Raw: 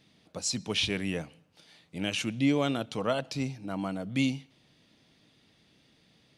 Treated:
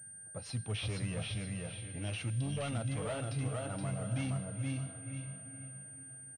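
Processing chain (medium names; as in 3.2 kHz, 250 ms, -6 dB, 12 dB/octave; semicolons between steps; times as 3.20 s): feedback delay 472 ms, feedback 25%, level -5 dB; spectral selection erased 2.30–2.57 s, 290–2700 Hz; whistle 1.6 kHz -53 dBFS; comb 1.5 ms, depth 33%; on a send: echo that smears into a reverb 500 ms, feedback 46%, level -13 dB; on the sum: saturation -28 dBFS, distortion -10 dB; flange 0.72 Hz, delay 1.3 ms, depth 1.5 ms, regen -63%; level-controlled noise filter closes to 1.3 kHz, open at -34 dBFS; peaking EQ 110 Hz +13.5 dB 0.62 oct; class-D stage that switches slowly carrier 8.8 kHz; trim -2 dB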